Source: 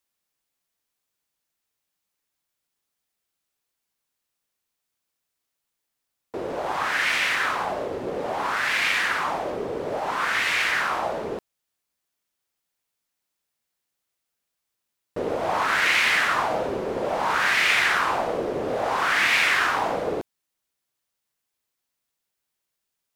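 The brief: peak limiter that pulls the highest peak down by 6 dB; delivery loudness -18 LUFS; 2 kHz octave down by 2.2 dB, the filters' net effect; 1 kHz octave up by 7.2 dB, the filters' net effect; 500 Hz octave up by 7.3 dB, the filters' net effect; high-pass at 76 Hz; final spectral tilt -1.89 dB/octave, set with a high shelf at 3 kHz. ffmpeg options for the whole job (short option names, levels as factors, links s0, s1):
-af "highpass=76,equalizer=f=500:t=o:g=6.5,equalizer=f=1000:t=o:g=8.5,equalizer=f=2000:t=o:g=-8.5,highshelf=f=3000:g=7,volume=1.41,alimiter=limit=0.398:level=0:latency=1"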